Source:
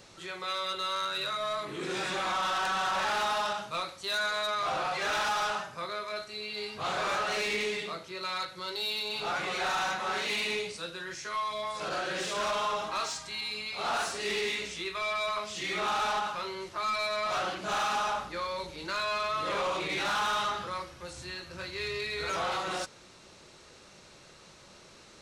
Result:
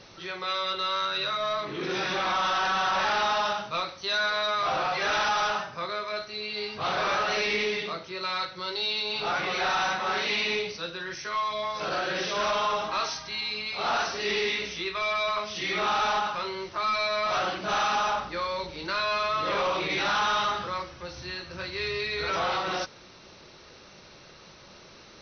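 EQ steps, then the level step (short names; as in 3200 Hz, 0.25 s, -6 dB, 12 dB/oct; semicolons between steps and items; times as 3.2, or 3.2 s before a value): brick-wall FIR low-pass 6200 Hz; +4.0 dB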